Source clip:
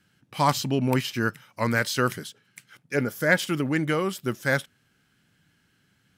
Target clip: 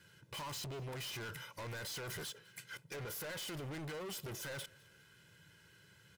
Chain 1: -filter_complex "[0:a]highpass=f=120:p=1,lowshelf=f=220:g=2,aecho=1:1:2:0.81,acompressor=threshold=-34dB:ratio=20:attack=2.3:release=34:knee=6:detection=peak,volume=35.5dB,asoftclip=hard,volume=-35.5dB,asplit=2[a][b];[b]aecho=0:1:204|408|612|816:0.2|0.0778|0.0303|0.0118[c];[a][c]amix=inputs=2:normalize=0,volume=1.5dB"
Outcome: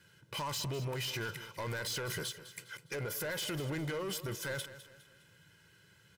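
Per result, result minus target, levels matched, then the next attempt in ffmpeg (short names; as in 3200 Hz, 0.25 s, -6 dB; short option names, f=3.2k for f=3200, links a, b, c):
echo-to-direct +11.5 dB; overloaded stage: distortion -7 dB
-filter_complex "[0:a]highpass=f=120:p=1,lowshelf=f=220:g=2,aecho=1:1:2:0.81,acompressor=threshold=-34dB:ratio=20:attack=2.3:release=34:knee=6:detection=peak,volume=35.5dB,asoftclip=hard,volume=-35.5dB,asplit=2[a][b];[b]aecho=0:1:204|408:0.0531|0.0207[c];[a][c]amix=inputs=2:normalize=0,volume=1.5dB"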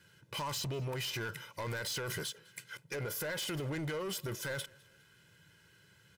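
overloaded stage: distortion -7 dB
-filter_complex "[0:a]highpass=f=120:p=1,lowshelf=f=220:g=2,aecho=1:1:2:0.81,acompressor=threshold=-34dB:ratio=20:attack=2.3:release=34:knee=6:detection=peak,volume=44dB,asoftclip=hard,volume=-44dB,asplit=2[a][b];[b]aecho=0:1:204|408:0.0531|0.0207[c];[a][c]amix=inputs=2:normalize=0,volume=1.5dB"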